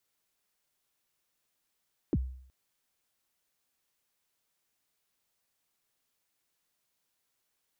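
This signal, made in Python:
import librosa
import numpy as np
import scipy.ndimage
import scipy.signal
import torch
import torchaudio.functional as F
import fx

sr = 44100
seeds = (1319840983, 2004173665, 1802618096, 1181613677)

y = fx.drum_kick(sr, seeds[0], length_s=0.37, level_db=-22.0, start_hz=400.0, end_hz=64.0, sweep_ms=43.0, decay_s=0.61, click=False)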